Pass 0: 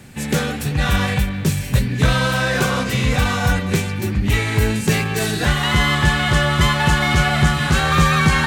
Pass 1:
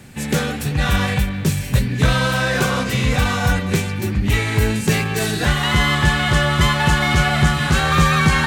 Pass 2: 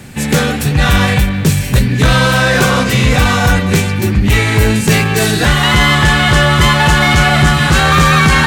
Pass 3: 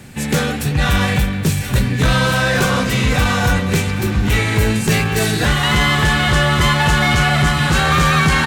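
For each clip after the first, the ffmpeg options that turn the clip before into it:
-af anull
-af "asoftclip=type=tanh:threshold=-5dB,apsyclip=12dB,volume=-3.5dB"
-af "aecho=1:1:823|1646|2469|3292|4115:0.211|0.0993|0.0467|0.0219|0.0103,volume=-5dB"

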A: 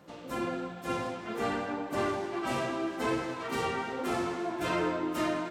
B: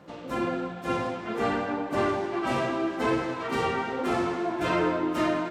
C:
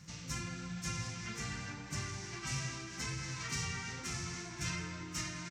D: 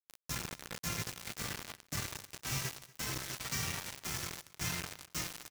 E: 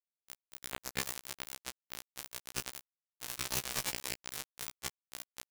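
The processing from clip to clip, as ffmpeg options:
-af "lowpass=f=3.9k:p=1,volume=5dB"
-af "acompressor=threshold=-30dB:ratio=6,firequalizer=gain_entry='entry(150,0);entry(250,-20);entry(590,-28);entry(960,-19);entry(2100,-5);entry(3300,-8);entry(5800,12);entry(11000,-4)':delay=0.05:min_phase=1,volume=5dB"
-af "acrusher=bits=5:mix=0:aa=0.000001,aecho=1:1:238:0.075"
-af "acrusher=bits=4:mix=0:aa=0.000001,afftfilt=real='re*1.73*eq(mod(b,3),0)':imag='im*1.73*eq(mod(b,3),0)':win_size=2048:overlap=0.75,volume=11dB"

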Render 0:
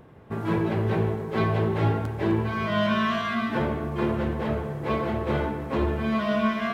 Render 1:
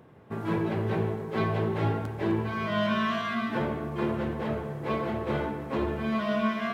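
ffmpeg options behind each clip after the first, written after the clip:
-af "highpass=93,volume=-3dB"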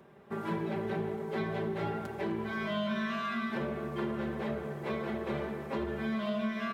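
-filter_complex "[0:a]aecho=1:1:5.1:0.72,acrossover=split=180[a][b];[b]acompressor=threshold=-29dB:ratio=6[c];[a][c]amix=inputs=2:normalize=0,equalizer=f=130:t=o:w=1.9:g=-5.5,volume=-2dB"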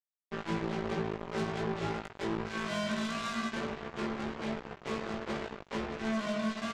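-filter_complex "[0:a]aresample=16000,acrusher=bits=4:mix=0:aa=0.5,aresample=44100,asoftclip=type=tanh:threshold=-30.5dB,asplit=2[a][b];[b]adelay=18,volume=-2.5dB[c];[a][c]amix=inputs=2:normalize=0,volume=1.5dB"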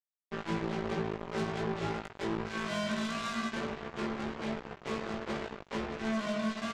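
-af anull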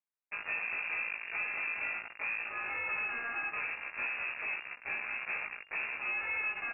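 -af "volume=30dB,asoftclip=hard,volume=-30dB,lowpass=f=2.4k:t=q:w=0.5098,lowpass=f=2.4k:t=q:w=0.6013,lowpass=f=2.4k:t=q:w=0.9,lowpass=f=2.4k:t=q:w=2.563,afreqshift=-2800"

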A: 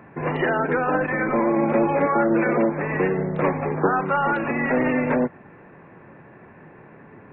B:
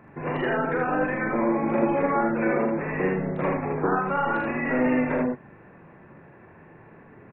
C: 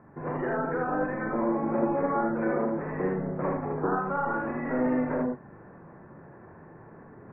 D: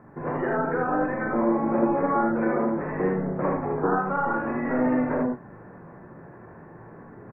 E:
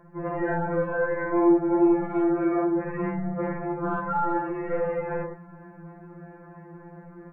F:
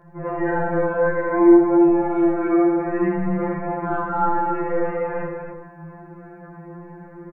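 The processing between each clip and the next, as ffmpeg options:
-filter_complex "[0:a]lowshelf=f=67:g=7.5,asplit=2[a][b];[b]aecho=0:1:43|79:0.562|0.708[c];[a][c]amix=inputs=2:normalize=0,volume=-6dB"
-af "lowpass=f=1.6k:w=0.5412,lowpass=f=1.6k:w=1.3066,areverse,acompressor=mode=upward:threshold=-38dB:ratio=2.5,areverse,volume=-3.5dB"
-filter_complex "[0:a]asplit=2[a][b];[b]adelay=17,volume=-10.5dB[c];[a][c]amix=inputs=2:normalize=0,volume=3.5dB"
-af "acontrast=48,afftfilt=real='re*2.83*eq(mod(b,8),0)':imag='im*2.83*eq(mod(b,8),0)':win_size=2048:overlap=0.75,volume=-5dB"
-filter_complex "[0:a]flanger=delay=18.5:depth=5:speed=0.53,asplit=2[a][b];[b]aecho=0:1:81.63|277:0.562|0.501[c];[a][c]amix=inputs=2:normalize=0,volume=6dB"

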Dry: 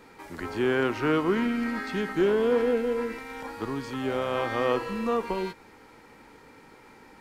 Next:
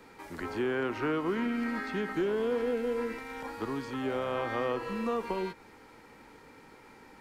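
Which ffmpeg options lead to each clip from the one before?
-filter_complex "[0:a]acrossover=split=180|2700[a][b][c];[a]acompressor=threshold=-44dB:ratio=4[d];[b]acompressor=threshold=-26dB:ratio=4[e];[c]acompressor=threshold=-50dB:ratio=4[f];[d][e][f]amix=inputs=3:normalize=0,volume=-2dB"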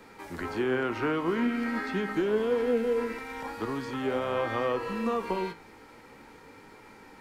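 -af "flanger=delay=9.3:depth=8.8:regen=68:speed=0.44:shape=sinusoidal,volume=7dB"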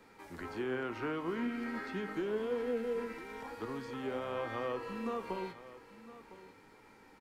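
-af "aecho=1:1:1008:0.158,volume=-8.5dB"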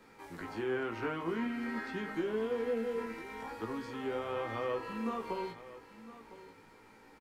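-filter_complex "[0:a]asplit=2[a][b];[b]adelay=18,volume=-5dB[c];[a][c]amix=inputs=2:normalize=0"

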